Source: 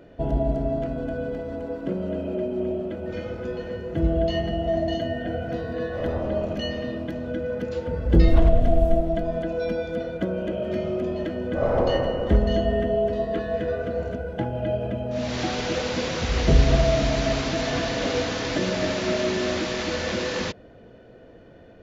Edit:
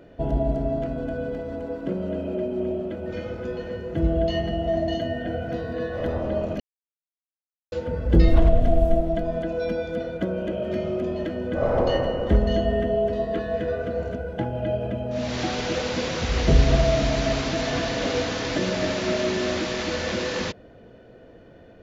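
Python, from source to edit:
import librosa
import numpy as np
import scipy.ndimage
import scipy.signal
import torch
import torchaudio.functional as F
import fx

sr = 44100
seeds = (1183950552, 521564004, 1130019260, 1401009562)

y = fx.edit(x, sr, fx.silence(start_s=6.6, length_s=1.12), tone=tone)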